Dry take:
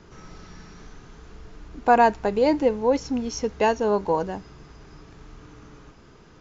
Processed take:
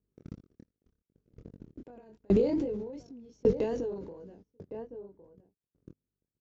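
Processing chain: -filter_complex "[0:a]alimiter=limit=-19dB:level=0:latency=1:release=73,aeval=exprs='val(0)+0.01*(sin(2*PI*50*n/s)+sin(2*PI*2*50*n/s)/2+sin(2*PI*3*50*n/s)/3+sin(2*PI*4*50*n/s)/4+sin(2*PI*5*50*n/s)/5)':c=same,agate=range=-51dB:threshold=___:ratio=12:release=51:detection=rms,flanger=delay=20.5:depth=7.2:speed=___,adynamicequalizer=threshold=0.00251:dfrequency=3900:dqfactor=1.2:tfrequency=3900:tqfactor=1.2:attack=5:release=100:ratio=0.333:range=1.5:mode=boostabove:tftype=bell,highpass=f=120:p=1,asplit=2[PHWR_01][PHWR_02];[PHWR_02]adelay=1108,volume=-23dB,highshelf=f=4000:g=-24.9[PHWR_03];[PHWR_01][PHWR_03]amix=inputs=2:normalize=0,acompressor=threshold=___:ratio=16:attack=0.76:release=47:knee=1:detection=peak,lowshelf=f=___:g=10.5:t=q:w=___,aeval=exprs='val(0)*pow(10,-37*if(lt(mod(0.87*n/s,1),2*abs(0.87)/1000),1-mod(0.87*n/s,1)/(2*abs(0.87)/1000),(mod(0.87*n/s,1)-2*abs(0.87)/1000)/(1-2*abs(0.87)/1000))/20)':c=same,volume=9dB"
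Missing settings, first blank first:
-35dB, 2.6, -37dB, 630, 1.5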